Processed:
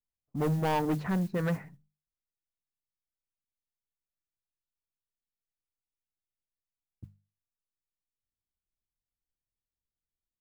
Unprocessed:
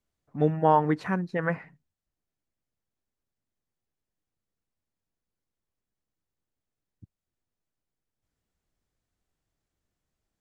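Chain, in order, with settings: gate with hold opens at -52 dBFS; tilt EQ -2.5 dB/octave; hum notches 50/100/150/200 Hz; modulation noise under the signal 26 dB; saturation -22 dBFS, distortion -7 dB; tape noise reduction on one side only decoder only; trim -2 dB

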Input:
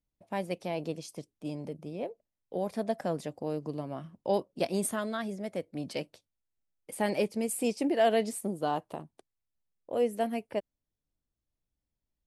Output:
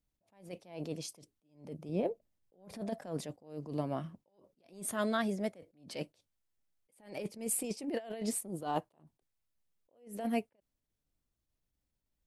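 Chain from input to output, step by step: 1.89–2.81 s: bass shelf 460 Hz +7.5 dB; compressor with a negative ratio -31 dBFS, ratio -0.5; attacks held to a fixed rise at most 130 dB/s

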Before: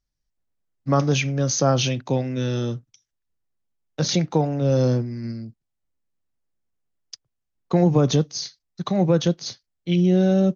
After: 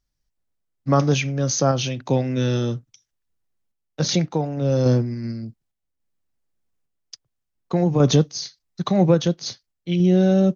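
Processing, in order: random-step tremolo; trim +3.5 dB

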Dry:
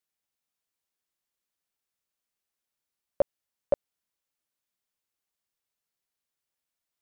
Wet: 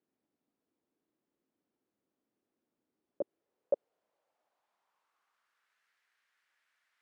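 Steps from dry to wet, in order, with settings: compressor with a negative ratio -28 dBFS, ratio -0.5; band-pass sweep 290 Hz -> 1.7 kHz, 2.95–5.85 s; trim +9 dB

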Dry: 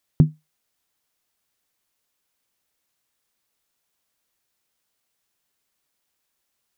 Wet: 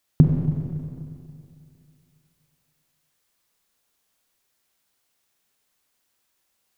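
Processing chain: Schroeder reverb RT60 2.5 s, combs from 31 ms, DRR 1.5 dB; trim +1.5 dB

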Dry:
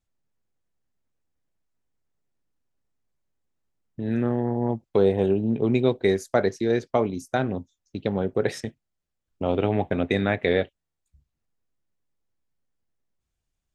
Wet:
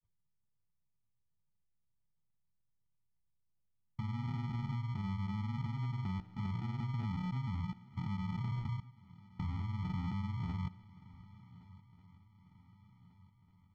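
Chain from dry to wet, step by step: gate -53 dBFS, range -14 dB; elliptic band-stop 180–8400 Hz, stop band 50 dB; hum notches 60/120/180/240/300/360/420/480 Hz; low-pass that closes with the level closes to 330 Hz, closed at -27.5 dBFS; peaking EQ 120 Hz +7.5 dB 1.5 oct; in parallel at -1 dB: compressor with a negative ratio -35 dBFS, ratio -1; on the sum: peak limiter -25.5 dBFS, peak gain reduction 9.5 dB; level held to a coarse grid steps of 22 dB; granulator 100 ms, grains 20 per s, spray 26 ms, pitch spread up and down by 0 st; sample-and-hold 41×; distance through air 220 m; shuffle delay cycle 1494 ms, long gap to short 3:1, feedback 50%, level -21.5 dB; trim +8.5 dB

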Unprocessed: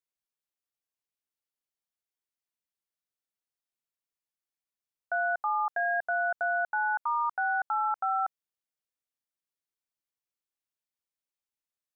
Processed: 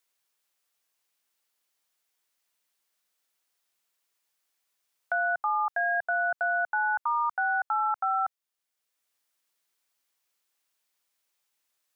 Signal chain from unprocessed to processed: bass shelf 370 Hz -12 dB; three bands compressed up and down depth 40%; trim +3 dB

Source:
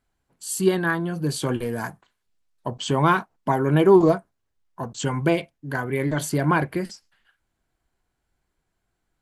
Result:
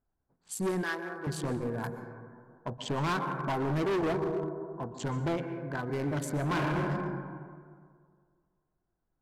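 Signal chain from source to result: local Wiener filter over 15 samples; 5.14–5.80 s: treble shelf 3.9 kHz -11.5 dB; reverberation RT60 2.2 s, pre-delay 112 ms, DRR 9 dB; 6.43–6.86 s: reverb throw, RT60 1.8 s, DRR 0 dB; overload inside the chain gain 21 dB; level-controlled noise filter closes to 1.8 kHz, open at -27 dBFS; 0.83–1.27 s: high-pass 460 Hz 12 dB/octave; 1.83–2.76 s: treble shelf 10 kHz +11 dB; trim -6 dB

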